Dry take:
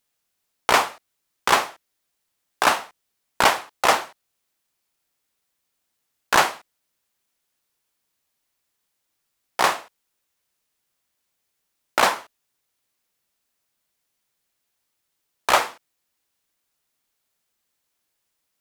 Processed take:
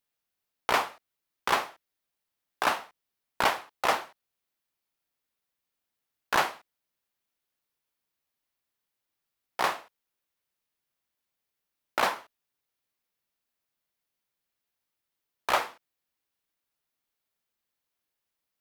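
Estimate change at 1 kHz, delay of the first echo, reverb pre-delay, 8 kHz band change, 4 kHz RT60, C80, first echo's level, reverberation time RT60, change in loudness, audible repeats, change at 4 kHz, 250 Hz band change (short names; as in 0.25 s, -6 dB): -7.5 dB, none, none, -12.0 dB, none, none, none, none, -8.0 dB, none, -9.0 dB, -7.5 dB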